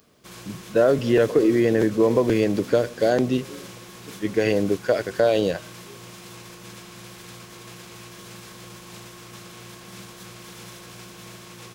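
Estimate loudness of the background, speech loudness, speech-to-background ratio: -41.0 LUFS, -21.5 LUFS, 19.5 dB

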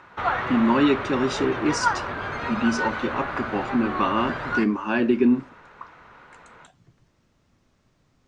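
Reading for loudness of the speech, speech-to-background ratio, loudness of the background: -24.0 LUFS, 4.5 dB, -28.5 LUFS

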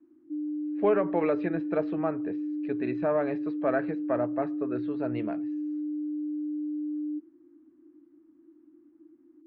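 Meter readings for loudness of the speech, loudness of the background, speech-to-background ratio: -31.0 LUFS, -33.5 LUFS, 2.5 dB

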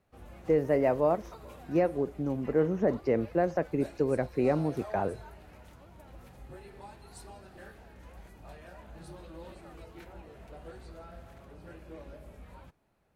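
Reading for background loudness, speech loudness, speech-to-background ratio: -49.5 LUFS, -29.5 LUFS, 20.0 dB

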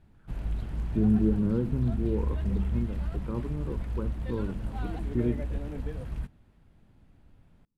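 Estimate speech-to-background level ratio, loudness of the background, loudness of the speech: 4.0 dB, -35.0 LUFS, -31.0 LUFS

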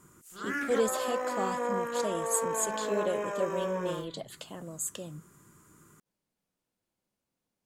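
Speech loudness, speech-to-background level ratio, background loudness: -34.5 LUFS, -1.0 dB, -33.5 LUFS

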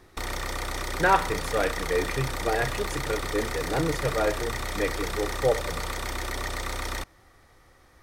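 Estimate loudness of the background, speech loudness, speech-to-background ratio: -32.0 LUFS, -28.5 LUFS, 3.5 dB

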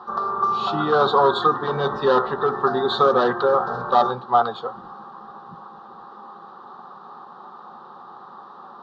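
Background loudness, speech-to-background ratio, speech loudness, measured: -27.0 LUFS, 6.0 dB, -21.0 LUFS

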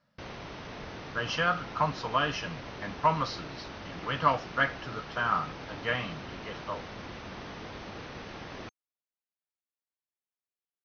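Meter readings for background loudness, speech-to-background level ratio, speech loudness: -42.5 LUFS, 11.5 dB, -31.0 LUFS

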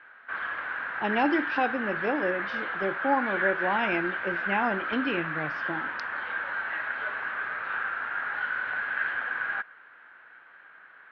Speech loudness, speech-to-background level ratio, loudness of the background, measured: -30.0 LUFS, 0.5 dB, -30.5 LUFS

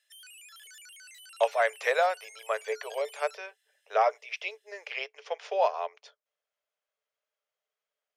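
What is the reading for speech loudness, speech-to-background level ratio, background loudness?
-30.5 LUFS, 18.0 dB, -48.5 LUFS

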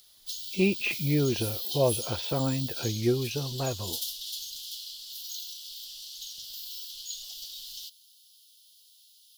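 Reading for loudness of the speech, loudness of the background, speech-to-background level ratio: -29.5 LUFS, -35.0 LUFS, 5.5 dB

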